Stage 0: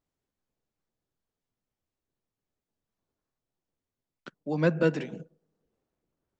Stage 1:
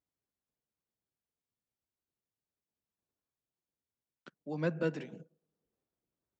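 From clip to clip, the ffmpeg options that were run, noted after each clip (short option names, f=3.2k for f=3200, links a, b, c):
-af "highpass=46,volume=-8.5dB"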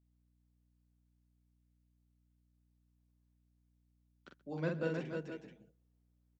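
-filter_complex "[0:a]asplit=2[a][b];[b]aecho=0:1:45|130|313|474|483:0.631|0.106|0.596|0.266|0.211[c];[a][c]amix=inputs=2:normalize=0,aeval=exprs='val(0)+0.000398*(sin(2*PI*60*n/s)+sin(2*PI*2*60*n/s)/2+sin(2*PI*3*60*n/s)/3+sin(2*PI*4*60*n/s)/4+sin(2*PI*5*60*n/s)/5)':c=same,volume=-4.5dB"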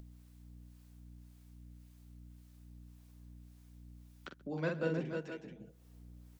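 -filter_complex "[0:a]acompressor=mode=upward:threshold=-42dB:ratio=2.5,acrossover=split=530[a][b];[a]aeval=exprs='val(0)*(1-0.5/2+0.5/2*cos(2*PI*1.8*n/s))':c=same[c];[b]aeval=exprs='val(0)*(1-0.5/2-0.5/2*cos(2*PI*1.8*n/s))':c=same[d];[c][d]amix=inputs=2:normalize=0,volume=4dB"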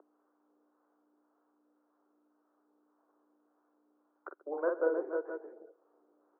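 -af "asuperpass=centerf=700:order=12:qfactor=0.66,volume=6.5dB"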